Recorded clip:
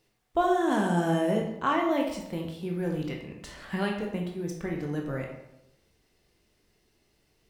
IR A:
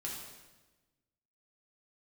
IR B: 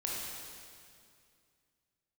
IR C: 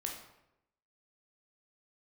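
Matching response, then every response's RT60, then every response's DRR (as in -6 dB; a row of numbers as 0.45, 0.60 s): C; 1.2, 2.3, 0.85 s; -4.0, -4.0, 0.0 dB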